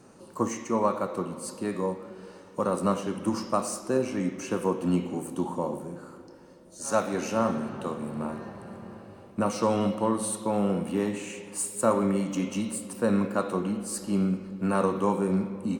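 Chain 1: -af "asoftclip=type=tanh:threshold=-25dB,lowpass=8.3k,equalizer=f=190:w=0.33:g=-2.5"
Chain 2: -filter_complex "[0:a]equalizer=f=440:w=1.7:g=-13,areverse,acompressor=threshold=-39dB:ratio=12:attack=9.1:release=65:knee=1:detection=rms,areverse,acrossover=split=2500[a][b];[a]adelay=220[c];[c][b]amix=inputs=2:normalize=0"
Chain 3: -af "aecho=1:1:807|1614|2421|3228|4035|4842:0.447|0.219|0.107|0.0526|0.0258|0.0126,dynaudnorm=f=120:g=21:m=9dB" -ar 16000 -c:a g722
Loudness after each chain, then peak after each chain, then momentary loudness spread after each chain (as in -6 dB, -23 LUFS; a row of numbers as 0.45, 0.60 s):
-34.5, -42.5, -21.0 LUFS; -24.0, -26.0, -2.5 dBFS; 12, 6, 11 LU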